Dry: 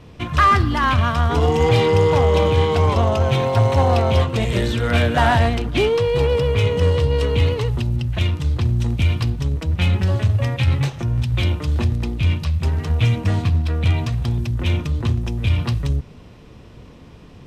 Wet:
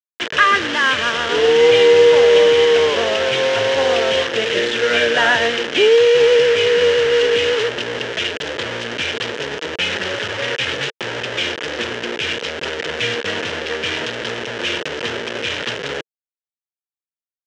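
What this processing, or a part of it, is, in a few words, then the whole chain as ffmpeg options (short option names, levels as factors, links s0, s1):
hand-held game console: -af "acrusher=bits=3:mix=0:aa=0.000001,highpass=420,equalizer=f=460:t=q:w=4:g=8,equalizer=f=760:t=q:w=4:g=-8,equalizer=f=1100:t=q:w=4:g=-7,equalizer=f=1700:t=q:w=4:g=7,equalizer=f=3000:t=q:w=4:g=7,equalizer=f=4500:t=q:w=4:g=-5,lowpass=f=5700:w=0.5412,lowpass=f=5700:w=1.3066,volume=1.41"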